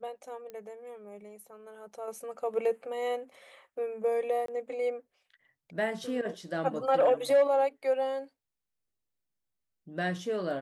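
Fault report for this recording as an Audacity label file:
0.500000	0.500000	pop -30 dBFS
4.460000	4.480000	dropout 23 ms

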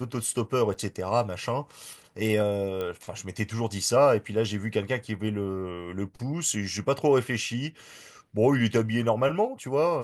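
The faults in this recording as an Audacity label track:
0.740000	0.750000	dropout 5.5 ms
2.810000	2.810000	pop -20 dBFS

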